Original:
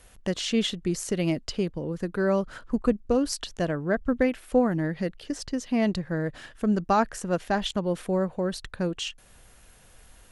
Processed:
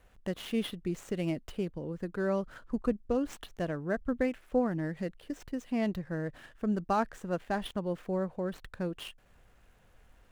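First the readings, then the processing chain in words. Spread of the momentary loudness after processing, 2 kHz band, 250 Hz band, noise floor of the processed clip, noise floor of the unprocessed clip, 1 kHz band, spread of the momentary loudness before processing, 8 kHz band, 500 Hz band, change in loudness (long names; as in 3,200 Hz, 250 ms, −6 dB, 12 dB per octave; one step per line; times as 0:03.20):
8 LU, −7.0 dB, −6.5 dB, −62 dBFS, −54 dBFS, −6.5 dB, 8 LU, −15.5 dB, −6.5 dB, −7.0 dB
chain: running median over 9 samples
level −6.5 dB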